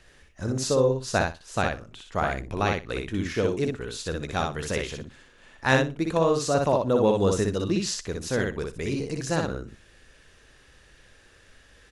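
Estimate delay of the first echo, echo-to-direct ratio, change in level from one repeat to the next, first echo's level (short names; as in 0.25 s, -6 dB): 61 ms, -3.5 dB, -16.0 dB, -3.5 dB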